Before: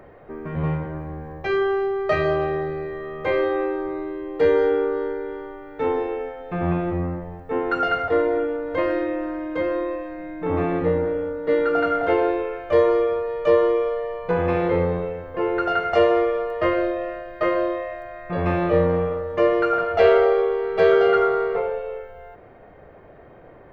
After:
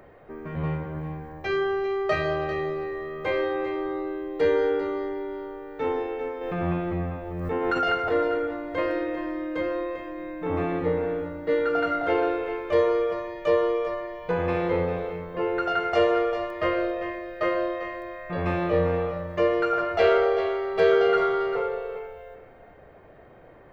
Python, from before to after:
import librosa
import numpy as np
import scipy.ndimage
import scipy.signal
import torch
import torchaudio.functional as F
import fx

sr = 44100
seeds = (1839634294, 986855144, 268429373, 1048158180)

y = fx.high_shelf(x, sr, hz=3000.0, db=7.0)
y = y + 10.0 ** (-10.5 / 20.0) * np.pad(y, (int(396 * sr / 1000.0), 0))[:len(y)]
y = fx.pre_swell(y, sr, db_per_s=31.0, at=(6.41, 8.12))
y = F.gain(torch.from_numpy(y), -4.5).numpy()